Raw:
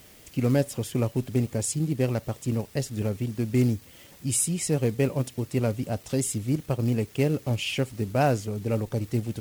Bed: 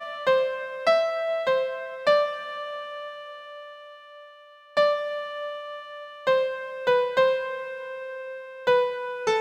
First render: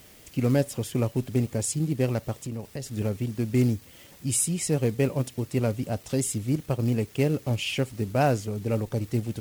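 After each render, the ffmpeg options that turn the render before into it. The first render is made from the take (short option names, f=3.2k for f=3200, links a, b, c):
-filter_complex "[0:a]asettb=1/sr,asplit=3[a][b][c];[a]atrim=end=2.424[d];[b]atrim=start=2.42:end=2.91,asetpts=PTS-STARTPTS,afade=t=in:d=0.004:c=qsin,afade=t=out:st=0.486:d=0.004:c=qsin,acompressor=threshold=-30dB:ratio=6:attack=3.2:release=140:knee=1:detection=peak[e];[c]atrim=start=2.906[f];[d][e]acrossfade=d=0.004:c1=hsin:c2=qsin[g];[g][f]acrossfade=d=0.004:c1=qsin:c2=hsin"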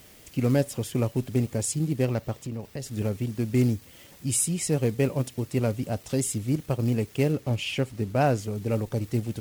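-filter_complex "[0:a]asettb=1/sr,asplit=3[a][b][c];[a]atrim=end=2.054[d];[b]atrim=start=2.05:end=2.78,asetpts=PTS-STARTPTS,afade=t=in:d=0.004:c=qsin,afade=t=out:st=0.726:d=0.004:c=qsin,equalizer=f=10k:t=o:w=1.2:g=-6[e];[c]atrim=start=2.776[f];[d][e]acrossfade=d=0.004:c1=hsin:c2=qsin[g];[g][f]acrossfade=d=0.004:c1=qsin:c2=hsin,asettb=1/sr,asplit=3[h][i][j];[h]atrim=end=7.324[k];[i]atrim=start=7.32:end=8.38,asetpts=PTS-STARTPTS,afade=t=in:d=0.004:c=qsin,afade=t=out:st=1.056:d=0.004:c=qsin,highshelf=f=4.8k:g=-5[l];[j]atrim=start=8.376[m];[k][l]acrossfade=d=0.004:c1=hsin:c2=qsin[n];[n][m]acrossfade=d=0.004:c1=qsin:c2=hsin"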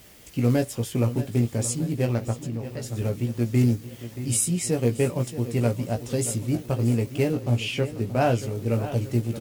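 -filter_complex "[0:a]asplit=2[a][b];[b]adelay=17,volume=-5dB[c];[a][c]amix=inputs=2:normalize=0,asplit=2[d][e];[e]adelay=628,lowpass=f=4.9k:p=1,volume=-13dB,asplit=2[f][g];[g]adelay=628,lowpass=f=4.9k:p=1,volume=0.55,asplit=2[h][i];[i]adelay=628,lowpass=f=4.9k:p=1,volume=0.55,asplit=2[j][k];[k]adelay=628,lowpass=f=4.9k:p=1,volume=0.55,asplit=2[l][m];[m]adelay=628,lowpass=f=4.9k:p=1,volume=0.55,asplit=2[n][o];[o]adelay=628,lowpass=f=4.9k:p=1,volume=0.55[p];[d][f][h][j][l][n][p]amix=inputs=7:normalize=0"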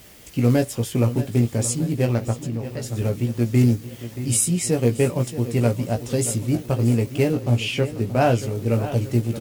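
-af "volume=3.5dB"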